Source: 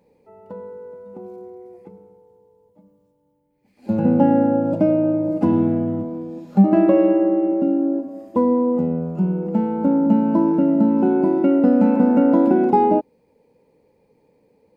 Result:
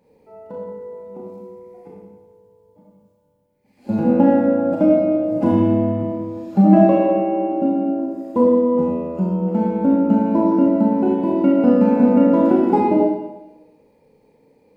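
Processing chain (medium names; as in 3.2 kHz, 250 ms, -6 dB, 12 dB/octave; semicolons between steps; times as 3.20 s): Schroeder reverb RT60 0.99 s, combs from 26 ms, DRR -3.5 dB; trim -1 dB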